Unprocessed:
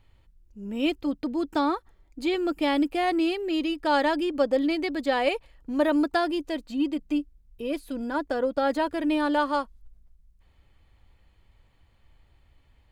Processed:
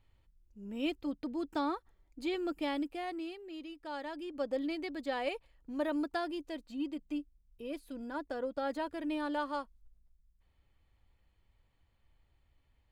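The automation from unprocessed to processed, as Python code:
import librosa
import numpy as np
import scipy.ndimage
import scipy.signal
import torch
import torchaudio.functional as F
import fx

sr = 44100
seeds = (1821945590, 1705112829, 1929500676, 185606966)

y = fx.gain(x, sr, db=fx.line((2.54, -9.0), (3.44, -18.5), (4.05, -18.5), (4.51, -11.0)))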